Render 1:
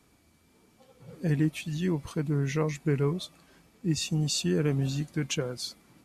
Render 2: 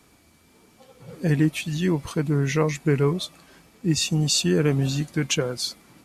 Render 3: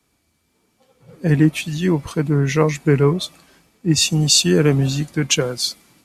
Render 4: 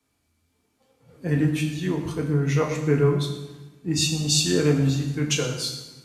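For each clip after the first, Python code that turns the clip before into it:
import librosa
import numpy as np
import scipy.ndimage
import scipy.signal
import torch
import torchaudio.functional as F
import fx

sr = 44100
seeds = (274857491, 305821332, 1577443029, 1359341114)

y1 = fx.low_shelf(x, sr, hz=350.0, db=-3.5)
y1 = y1 * librosa.db_to_amplitude(8.0)
y2 = fx.band_widen(y1, sr, depth_pct=40)
y2 = y2 * librosa.db_to_amplitude(5.0)
y3 = fx.rev_fdn(y2, sr, rt60_s=1.1, lf_ratio=1.3, hf_ratio=0.85, size_ms=67.0, drr_db=0.5)
y3 = y3 * librosa.db_to_amplitude(-9.0)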